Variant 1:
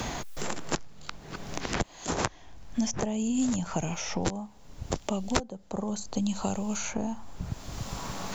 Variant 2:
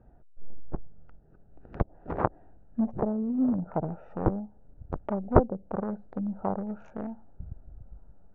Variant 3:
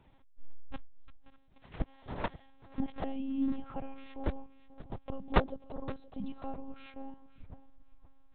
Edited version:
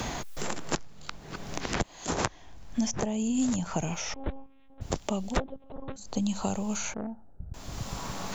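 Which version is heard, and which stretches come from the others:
1
4.14–4.81 s: from 3
5.34–6.02 s: from 3, crossfade 0.16 s
6.94–7.54 s: from 2

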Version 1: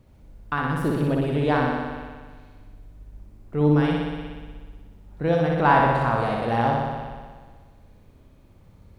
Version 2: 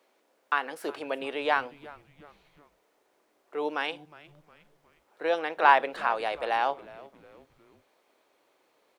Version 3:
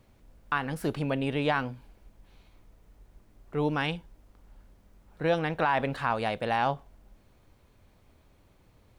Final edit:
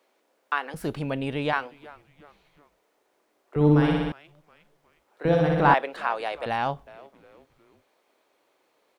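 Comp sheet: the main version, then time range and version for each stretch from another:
2
0.74–1.53 s: from 3
3.56–4.12 s: from 1
5.25–5.74 s: from 1
6.46–6.87 s: from 3

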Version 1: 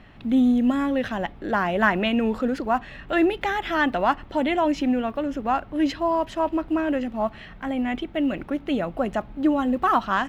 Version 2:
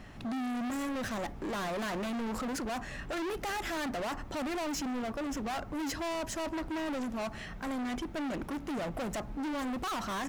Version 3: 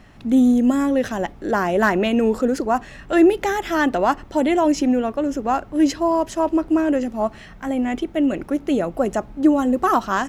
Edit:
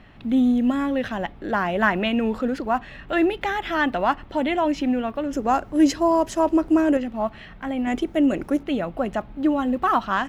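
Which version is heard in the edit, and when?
1
5.33–6.97 s: from 3
7.87–8.63 s: from 3
not used: 2

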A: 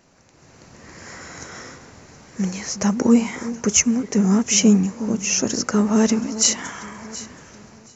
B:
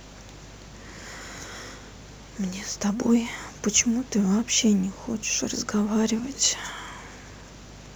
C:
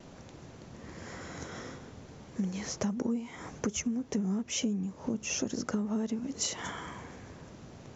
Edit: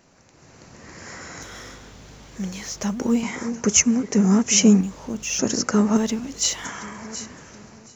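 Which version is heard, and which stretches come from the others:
A
1.42–3.23 s: from B
4.81–5.39 s: from B
5.97–6.65 s: from B
not used: C

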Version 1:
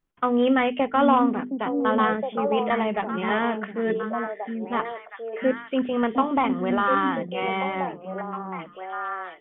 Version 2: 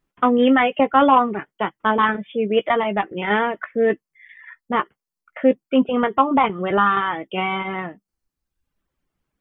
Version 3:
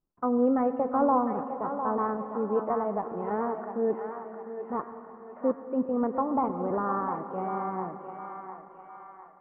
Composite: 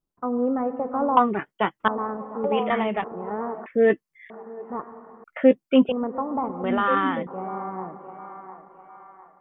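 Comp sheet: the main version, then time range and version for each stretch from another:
3
1.17–1.88 s: from 2
2.44–3.04 s: from 1
3.66–4.30 s: from 2
5.24–5.92 s: from 2
6.64–7.27 s: from 1

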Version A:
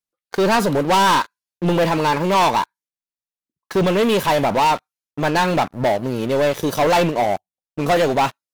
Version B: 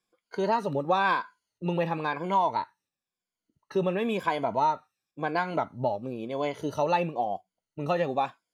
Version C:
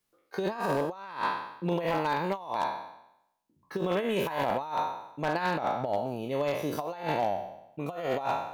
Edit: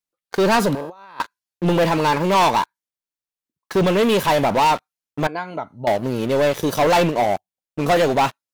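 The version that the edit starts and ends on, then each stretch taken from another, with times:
A
0.75–1.20 s: from C
5.27–5.87 s: from B

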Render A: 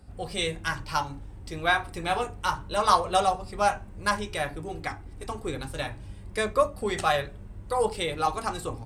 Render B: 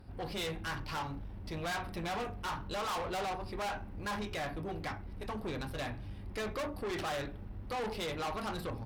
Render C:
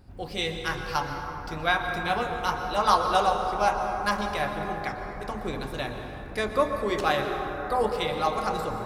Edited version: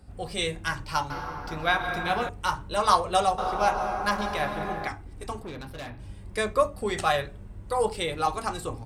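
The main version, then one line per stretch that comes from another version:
A
1.10–2.29 s: from C
3.38–4.88 s: from C
5.43–5.99 s: from B

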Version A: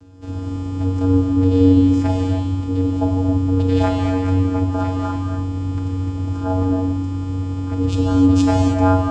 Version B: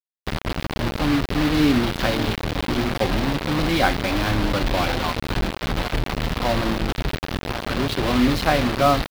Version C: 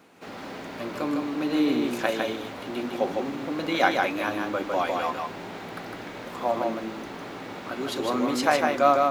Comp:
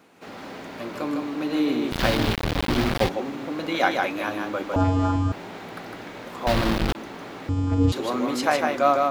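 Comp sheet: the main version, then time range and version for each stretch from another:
C
1.92–3.09 s: from B
4.76–5.32 s: from A
6.47–6.95 s: from B
7.49–7.92 s: from A

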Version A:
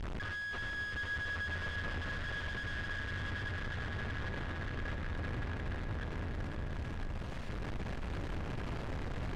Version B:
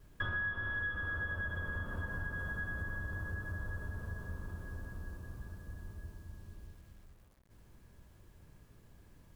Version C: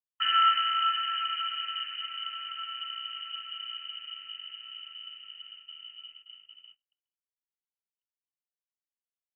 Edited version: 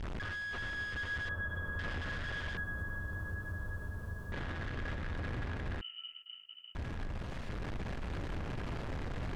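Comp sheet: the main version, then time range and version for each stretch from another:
A
1.29–1.79 s: from B
2.57–4.32 s: from B
5.81–6.75 s: from C

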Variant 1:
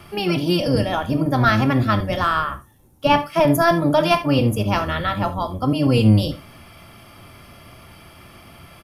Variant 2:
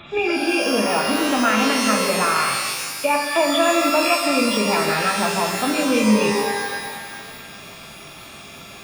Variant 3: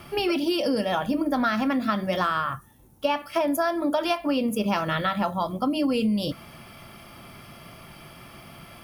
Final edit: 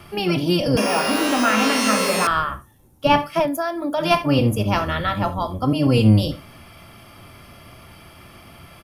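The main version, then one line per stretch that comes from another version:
1
0.77–2.27 s: from 2
3.42–4.03 s: from 3, crossfade 0.16 s

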